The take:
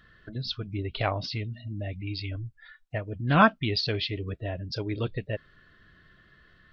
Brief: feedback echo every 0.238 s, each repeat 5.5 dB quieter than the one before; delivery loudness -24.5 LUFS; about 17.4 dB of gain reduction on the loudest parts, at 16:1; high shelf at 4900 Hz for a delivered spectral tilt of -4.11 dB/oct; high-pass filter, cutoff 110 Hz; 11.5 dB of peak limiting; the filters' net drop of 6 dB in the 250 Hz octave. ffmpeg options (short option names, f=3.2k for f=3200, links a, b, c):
-af "highpass=110,equalizer=f=250:t=o:g=-8,highshelf=f=4.9k:g=5,acompressor=threshold=-31dB:ratio=16,alimiter=level_in=6dB:limit=-24dB:level=0:latency=1,volume=-6dB,aecho=1:1:238|476|714|952|1190|1428|1666:0.531|0.281|0.149|0.079|0.0419|0.0222|0.0118,volume=15dB"